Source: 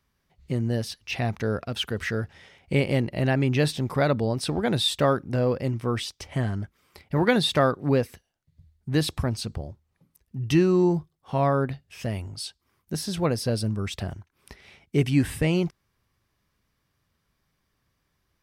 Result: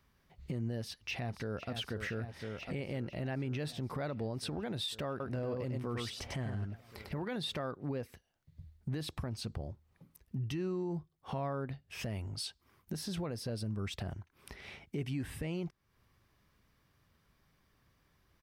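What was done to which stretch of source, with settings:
0.78–1.73 s: echo throw 500 ms, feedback 80%, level -12.5 dB
5.10–7.22 s: delay 99 ms -5.5 dB
whole clip: peaking EQ 8.4 kHz -4.5 dB 1.9 oct; compression 2.5:1, threshold -42 dBFS; peak limiter -32 dBFS; trim +3 dB

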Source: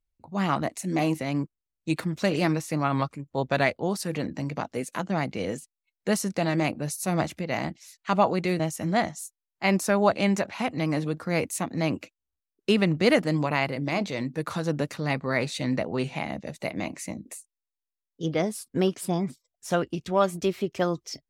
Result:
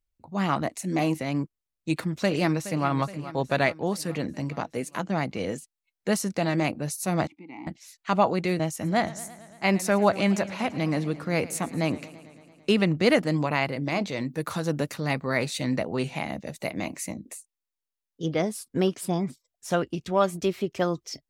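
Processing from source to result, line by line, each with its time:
2.13–2.88 s: echo throw 420 ms, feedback 60%, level -14 dB
7.27–7.67 s: vowel filter u
8.73–12.82 s: modulated delay 112 ms, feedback 73%, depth 102 cents, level -18.5 dB
14.29–17.13 s: treble shelf 11 kHz +12 dB

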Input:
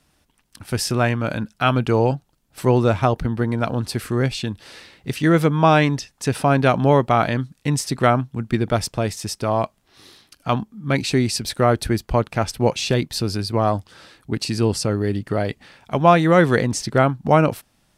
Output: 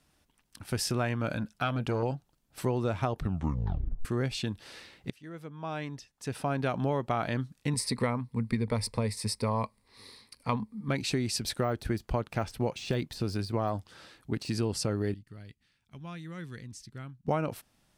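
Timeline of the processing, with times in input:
1.28–2.03 s: transformer saturation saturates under 530 Hz
3.15 s: tape stop 0.90 s
5.10–7.02 s: fade in quadratic, from -23 dB
7.73–10.89 s: rippled EQ curve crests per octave 0.93, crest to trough 12 dB
11.61–14.55 s: de-esser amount 70%
15.14–17.28 s: amplifier tone stack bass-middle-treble 6-0-2
whole clip: compression, threshold -19 dBFS; trim -6.5 dB

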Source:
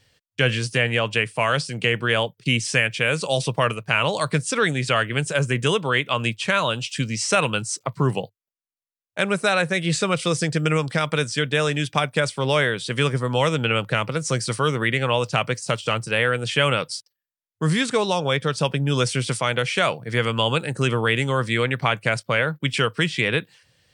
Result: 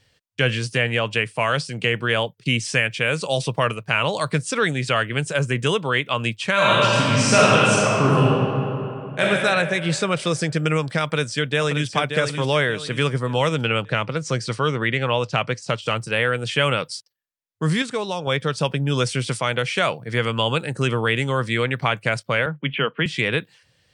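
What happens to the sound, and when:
6.53–9.22 s: reverb throw, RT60 2.9 s, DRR -7 dB
11.03–11.92 s: echo throw 580 ms, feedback 40%, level -7 dB
13.83–15.82 s: low-pass 6.3 kHz
17.82–18.27 s: gain -4.5 dB
22.46–23.06 s: Chebyshev band-pass 140–3200 Hz, order 5
whole clip: treble shelf 8.9 kHz -5 dB

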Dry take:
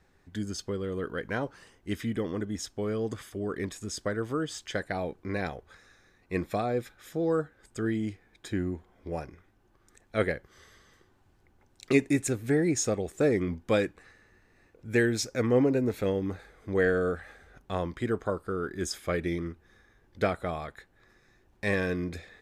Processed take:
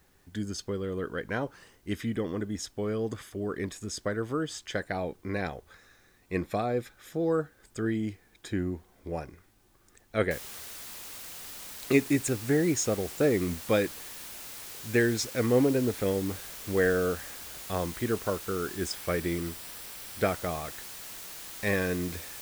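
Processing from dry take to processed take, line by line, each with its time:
10.31 s: noise floor step -70 dB -43 dB
18.75–20.28 s: band-stop 6.6 kHz, Q 13

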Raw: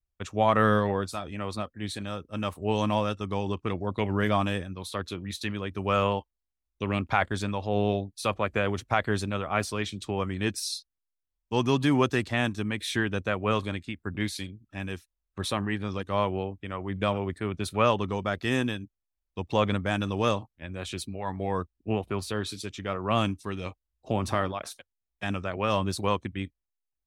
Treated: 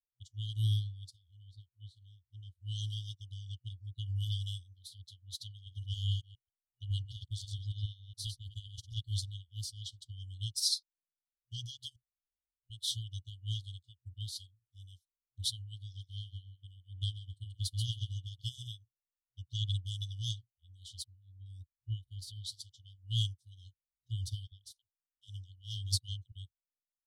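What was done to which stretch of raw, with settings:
1.09–2.60 s: low-pass 2.3 kHz -> 1.1 kHz 6 dB/octave
5.53–9.19 s: chunks repeated in reverse 137 ms, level -5 dB
11.96–12.70 s: room tone
15.78–18.68 s: feedback delay 134 ms, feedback 26%, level -8 dB
21.04–21.46 s: distance through air 320 m
24.47–26.32 s: phase dispersion lows, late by 50 ms, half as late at 470 Hz
whole clip: FFT band-reject 120–2900 Hz; dynamic bell 4.8 kHz, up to +5 dB, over -57 dBFS, Q 3.7; upward expansion 2.5:1, over -46 dBFS; trim +2.5 dB

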